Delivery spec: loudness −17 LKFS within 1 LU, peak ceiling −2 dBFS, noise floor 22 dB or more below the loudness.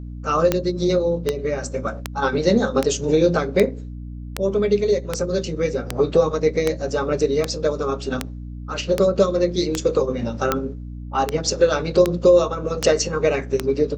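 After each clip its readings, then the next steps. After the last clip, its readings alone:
number of clicks 18; mains hum 60 Hz; hum harmonics up to 300 Hz; level of the hum −30 dBFS; integrated loudness −21.0 LKFS; sample peak −3.0 dBFS; target loudness −17.0 LKFS
→ click removal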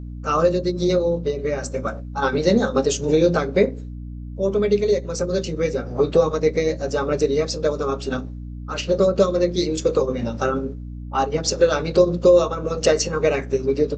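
number of clicks 0; mains hum 60 Hz; hum harmonics up to 300 Hz; level of the hum −30 dBFS
→ mains-hum notches 60/120/180/240/300 Hz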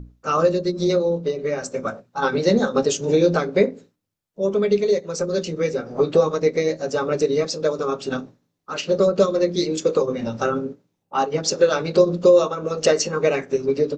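mains hum none found; integrated loudness −21.0 LKFS; sample peak −4.0 dBFS; target loudness −17.0 LKFS
→ level +4 dB
brickwall limiter −2 dBFS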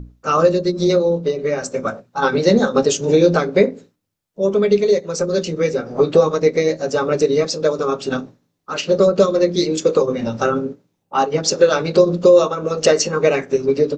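integrated loudness −17.0 LKFS; sample peak −2.0 dBFS; background noise floor −71 dBFS

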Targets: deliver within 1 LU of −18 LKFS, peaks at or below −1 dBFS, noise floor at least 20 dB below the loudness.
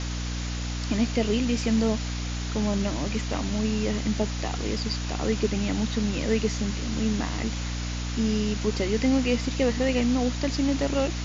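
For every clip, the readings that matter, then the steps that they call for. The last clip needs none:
mains hum 60 Hz; hum harmonics up to 300 Hz; level of the hum −28 dBFS; background noise floor −31 dBFS; target noise floor −47 dBFS; integrated loudness −26.5 LKFS; sample peak −11.5 dBFS; target loudness −18.0 LKFS
→ hum removal 60 Hz, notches 5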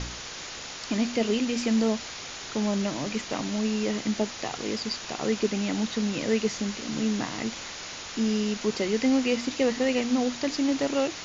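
mains hum none found; background noise floor −39 dBFS; target noise floor −48 dBFS
→ broadband denoise 9 dB, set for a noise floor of −39 dBFS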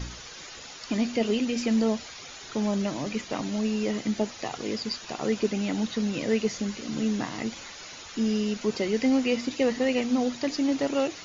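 background noise floor −43 dBFS; target noise floor −48 dBFS
→ broadband denoise 6 dB, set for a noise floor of −43 dBFS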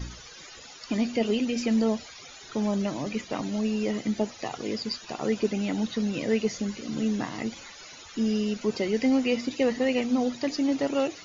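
background noise floor −46 dBFS; target noise floor −48 dBFS
→ broadband denoise 6 dB, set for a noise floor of −46 dBFS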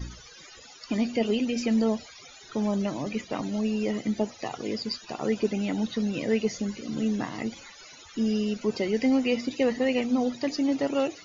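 background noise floor −49 dBFS; integrated loudness −28.0 LKFS; sample peak −13.5 dBFS; target loudness −18.0 LKFS
→ level +10 dB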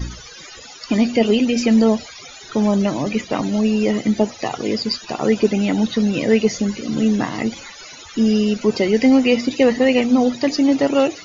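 integrated loudness −18.0 LKFS; sample peak −3.5 dBFS; background noise floor −39 dBFS

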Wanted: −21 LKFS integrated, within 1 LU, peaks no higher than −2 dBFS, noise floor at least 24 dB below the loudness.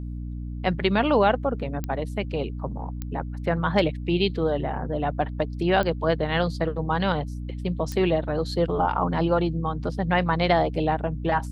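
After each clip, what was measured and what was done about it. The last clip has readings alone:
number of clicks 4; mains hum 60 Hz; hum harmonics up to 300 Hz; level of the hum −30 dBFS; integrated loudness −25.0 LKFS; sample peak −7.5 dBFS; target loudness −21.0 LKFS
→ click removal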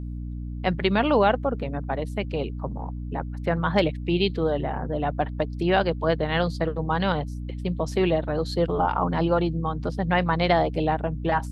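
number of clicks 0; mains hum 60 Hz; hum harmonics up to 300 Hz; level of the hum −30 dBFS
→ hum removal 60 Hz, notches 5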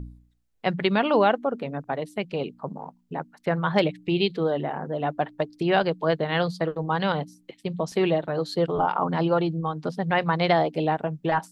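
mains hum none found; integrated loudness −25.5 LKFS; sample peak −8.0 dBFS; target loudness −21.0 LKFS
→ level +4.5 dB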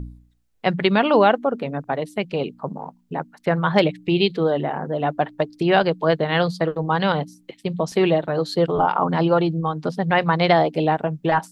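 integrated loudness −21.0 LKFS; sample peak −3.5 dBFS; background noise floor −59 dBFS

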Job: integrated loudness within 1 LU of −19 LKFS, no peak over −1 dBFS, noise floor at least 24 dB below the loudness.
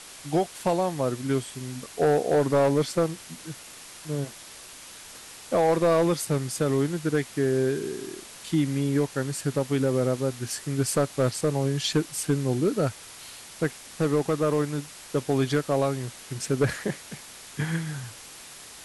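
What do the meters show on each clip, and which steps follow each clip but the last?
share of clipped samples 1.0%; peaks flattened at −15.5 dBFS; background noise floor −45 dBFS; target noise floor −51 dBFS; integrated loudness −26.5 LKFS; sample peak −15.5 dBFS; target loudness −19.0 LKFS
→ clipped peaks rebuilt −15.5 dBFS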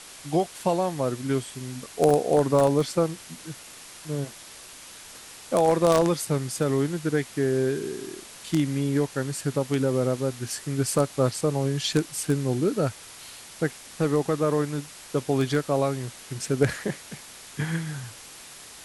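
share of clipped samples 0.0%; background noise floor −45 dBFS; target noise floor −50 dBFS
→ broadband denoise 6 dB, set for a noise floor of −45 dBFS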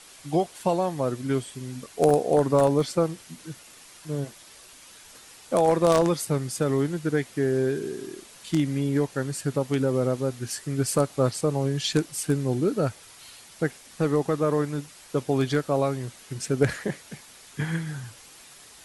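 background noise floor −49 dBFS; target noise floor −50 dBFS
→ broadband denoise 6 dB, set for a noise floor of −49 dBFS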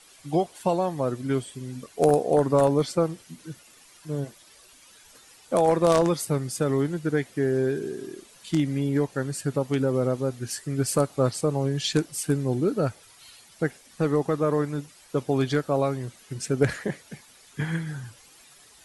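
background noise floor −54 dBFS; integrated loudness −26.0 LKFS; sample peak −6.5 dBFS; target loudness −19.0 LKFS
→ level +7 dB
brickwall limiter −1 dBFS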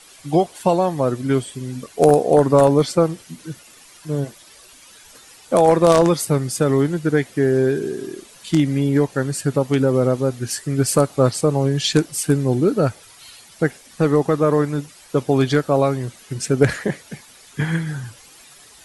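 integrated loudness −19.0 LKFS; sample peak −1.0 dBFS; background noise floor −47 dBFS

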